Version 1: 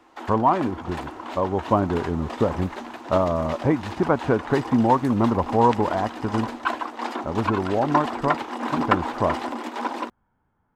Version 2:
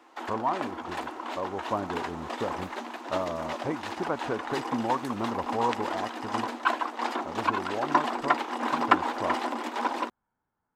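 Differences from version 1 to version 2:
speech -8.5 dB; master: add low shelf 210 Hz -9.5 dB

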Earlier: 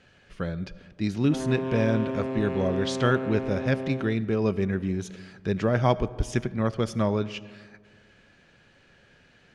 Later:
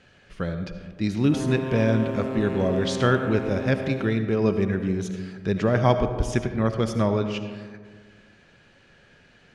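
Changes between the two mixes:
speech: send +11.5 dB; background: remove air absorption 78 m

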